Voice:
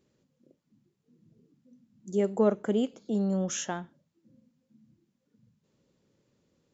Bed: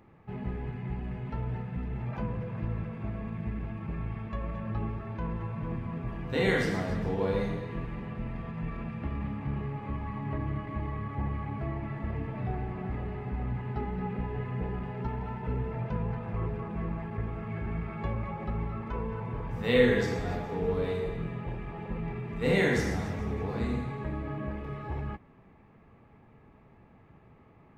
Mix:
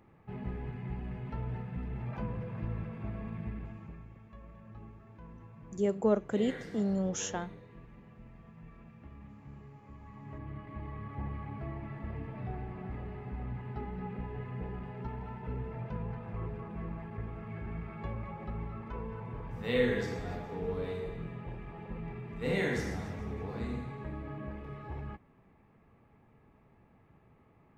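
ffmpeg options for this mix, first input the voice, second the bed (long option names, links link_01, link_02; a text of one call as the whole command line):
ffmpeg -i stem1.wav -i stem2.wav -filter_complex "[0:a]adelay=3650,volume=-3dB[link_01];[1:a]volume=7dB,afade=type=out:start_time=3.38:duration=0.69:silence=0.223872,afade=type=in:start_time=9.93:duration=1.26:silence=0.298538[link_02];[link_01][link_02]amix=inputs=2:normalize=0" out.wav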